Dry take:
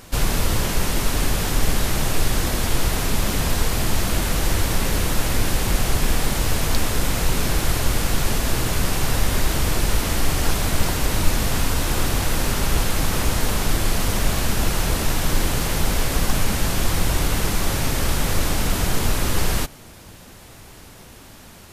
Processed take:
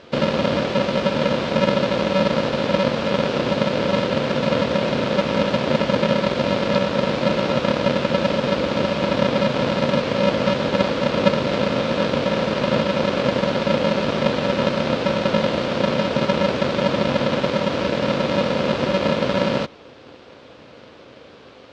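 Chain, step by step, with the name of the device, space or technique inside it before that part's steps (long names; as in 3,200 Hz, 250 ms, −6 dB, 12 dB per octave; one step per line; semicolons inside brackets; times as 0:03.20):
ring modulator pedal into a guitar cabinet (ring modulator with a square carrier 190 Hz; loudspeaker in its box 98–4,200 Hz, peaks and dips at 100 Hz −5 dB, 180 Hz −10 dB, 510 Hz +9 dB, 830 Hz −3 dB, 1,900 Hz −4 dB)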